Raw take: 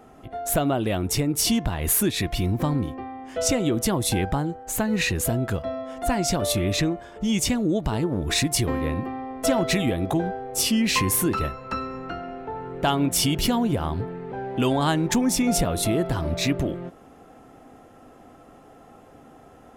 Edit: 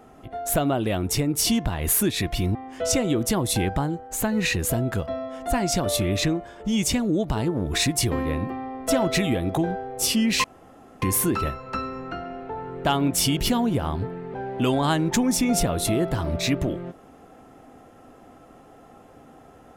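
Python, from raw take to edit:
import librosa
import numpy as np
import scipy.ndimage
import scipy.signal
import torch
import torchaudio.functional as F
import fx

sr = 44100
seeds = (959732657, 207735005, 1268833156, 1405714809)

y = fx.edit(x, sr, fx.cut(start_s=2.55, length_s=0.56),
    fx.insert_room_tone(at_s=11.0, length_s=0.58), tone=tone)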